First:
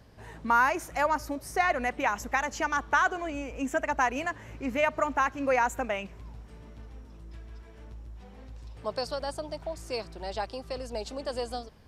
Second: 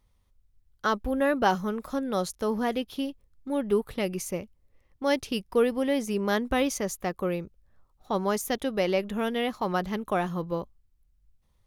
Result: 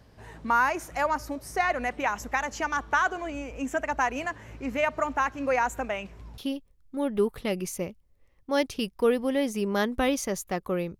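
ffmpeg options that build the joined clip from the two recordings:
ffmpeg -i cue0.wav -i cue1.wav -filter_complex "[0:a]apad=whole_dur=10.99,atrim=end=10.99,atrim=end=6.382[link_01];[1:a]atrim=start=2.908:end=7.52[link_02];[link_01][link_02]acrossfade=duration=0.004:curve1=hsin:curve2=hsin" out.wav

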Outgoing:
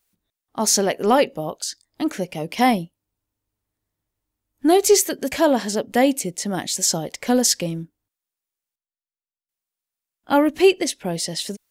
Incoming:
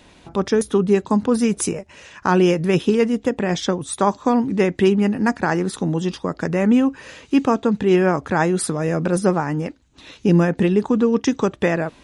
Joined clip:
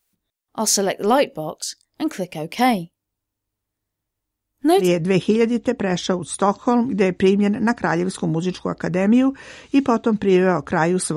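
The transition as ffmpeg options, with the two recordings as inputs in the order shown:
ffmpeg -i cue0.wav -i cue1.wav -filter_complex "[0:a]apad=whole_dur=11.16,atrim=end=11.16,atrim=end=4.89,asetpts=PTS-STARTPTS[link_01];[1:a]atrim=start=2.36:end=8.75,asetpts=PTS-STARTPTS[link_02];[link_01][link_02]acrossfade=duration=0.12:curve1=tri:curve2=tri" out.wav

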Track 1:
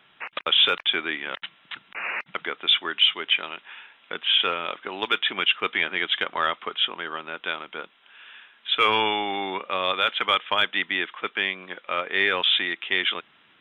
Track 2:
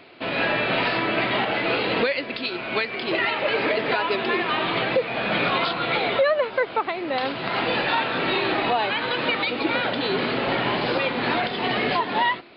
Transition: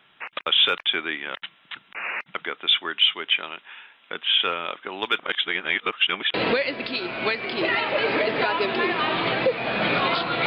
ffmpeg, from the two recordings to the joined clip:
ffmpeg -i cue0.wav -i cue1.wav -filter_complex "[0:a]apad=whole_dur=10.46,atrim=end=10.46,asplit=2[link_01][link_02];[link_01]atrim=end=5.192[link_03];[link_02]atrim=start=5.188:end=6.342,asetpts=PTS-STARTPTS,areverse[link_04];[1:a]atrim=start=1.838:end=5.96[link_05];[link_03][link_04]acrossfade=duration=0.004:curve1=hsin:curve2=hsin[link_06];[link_06][link_05]acrossfade=duration=0.004:curve1=hsin:curve2=hsin" out.wav

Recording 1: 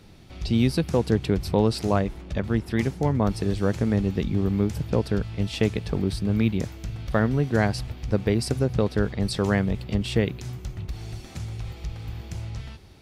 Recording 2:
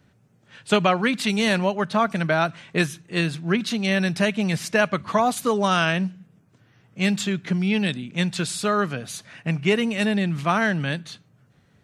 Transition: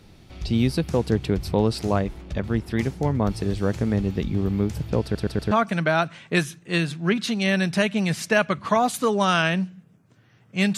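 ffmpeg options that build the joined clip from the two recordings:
ffmpeg -i cue0.wav -i cue1.wav -filter_complex "[0:a]apad=whole_dur=10.77,atrim=end=10.77,asplit=4[link_01][link_02][link_03][link_04];[link_01]atrim=end=5.152[link_05];[link_02]atrim=start=5.028:end=5.152[link_06];[link_03]atrim=start=5.028:end=5.152[link_07];[link_04]atrim=start=5.028:end=5.152[link_08];[1:a]atrim=start=1.938:end=7.2[link_09];[link_05][link_06]acrossfade=duration=0.004:curve1=hsin:curve2=hsin[link_10];[link_10][link_07]acrossfade=duration=0.004:curve1=hsin:curve2=hsin[link_11];[link_11][link_08]acrossfade=duration=0.004:curve1=hsin:curve2=hsin[link_12];[link_12][link_09]acrossfade=duration=0.004:curve1=hsin:curve2=hsin" out.wav

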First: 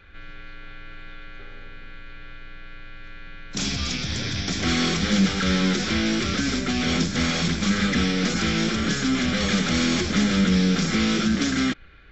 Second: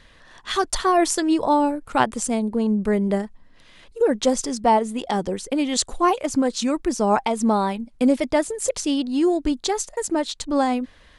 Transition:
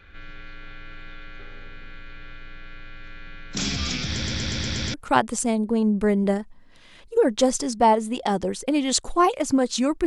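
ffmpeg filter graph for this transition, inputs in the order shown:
ffmpeg -i cue0.wav -i cue1.wav -filter_complex "[0:a]apad=whole_dur=10.06,atrim=end=10.06,asplit=7[link_01][link_02][link_03][link_04][link_05][link_06][link_07];[link_01]atrim=end=4.222[link_08];[link_02]atrim=start=4.098:end=4.222[link_09];[link_03]atrim=start=4.098:end=4.222[link_10];[link_04]atrim=start=4.098:end=4.222[link_11];[link_05]atrim=start=4.098:end=4.222[link_12];[link_06]atrim=start=4.098:end=4.222[link_13];[link_07]atrim=start=4.098:end=4.222[link_14];[1:a]atrim=start=1.778:end=6.9[link_15];[link_08][link_09]acrossfade=duration=0.004:curve1=hsin:curve2=hsin[link_16];[link_16][link_10]acrossfade=duration=0.004:curve1=hsin:curve2=hsin[link_17];[link_17][link_11]acrossfade=duration=0.004:curve1=hsin:curve2=hsin[link_18];[link_18][link_12]acrossfade=duration=0.004:curve1=hsin:curve2=hsin[link_19];[link_19][link_13]acrossfade=duration=0.004:curve1=hsin:curve2=hsin[link_20];[link_20][link_14]acrossfade=duration=0.004:curve1=hsin:curve2=hsin[link_21];[link_21][link_15]acrossfade=duration=0.004:curve1=hsin:curve2=hsin" out.wav

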